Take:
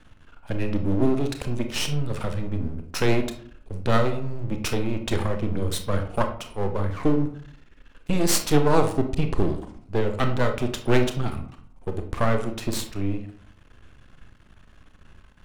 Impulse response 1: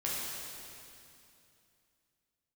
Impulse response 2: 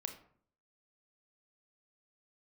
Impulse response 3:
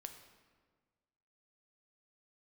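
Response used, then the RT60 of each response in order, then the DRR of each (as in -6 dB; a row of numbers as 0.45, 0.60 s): 2; 2.7, 0.55, 1.6 s; -7.0, 5.5, 5.5 dB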